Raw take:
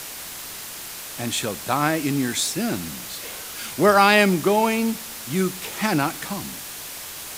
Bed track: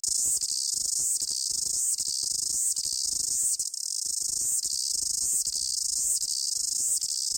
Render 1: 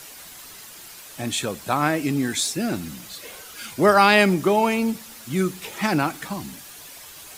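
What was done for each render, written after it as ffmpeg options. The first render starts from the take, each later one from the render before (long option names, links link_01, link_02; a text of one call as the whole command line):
ffmpeg -i in.wav -af "afftdn=noise_reduction=9:noise_floor=-36" out.wav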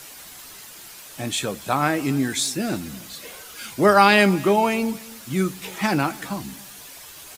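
ffmpeg -i in.wav -filter_complex "[0:a]asplit=2[link_01][link_02];[link_02]adelay=15,volume=-12dB[link_03];[link_01][link_03]amix=inputs=2:normalize=0,aecho=1:1:278:0.0794" out.wav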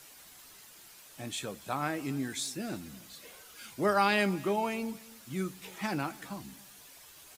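ffmpeg -i in.wav -af "volume=-12dB" out.wav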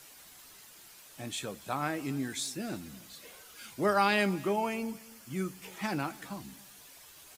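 ffmpeg -i in.wav -filter_complex "[0:a]asettb=1/sr,asplit=3[link_01][link_02][link_03];[link_01]atrim=end=4.474[link_04];[link_02]atrim=start=4.47:end=5.71,asetpts=PTS-STARTPTS,afade=type=in:duration=0.004:curve=qsin,afade=type=out:start_time=1.236:duration=0.004:curve=qsin,bandreject=frequency=3800:width=5.9[link_05];[link_03]atrim=start=5.706[link_06];[link_04][link_05]acrossfade=duration=0.004:curve1=hsin:curve2=qsin[link_07];[link_07][link_06]acrossfade=duration=0.004:curve1=qsin:curve2=hsin" out.wav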